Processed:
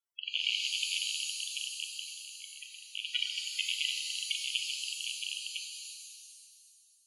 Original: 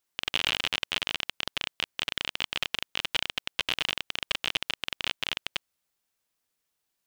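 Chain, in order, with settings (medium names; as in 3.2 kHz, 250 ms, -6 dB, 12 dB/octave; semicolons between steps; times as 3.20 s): in parallel at -1 dB: level held to a coarse grid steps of 15 dB; on the sum: loudest bins only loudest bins 32; 2.01–2.87 s: tape spacing loss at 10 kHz 45 dB; pitch-shifted reverb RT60 2 s, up +7 st, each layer -2 dB, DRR 3.5 dB; trim -6 dB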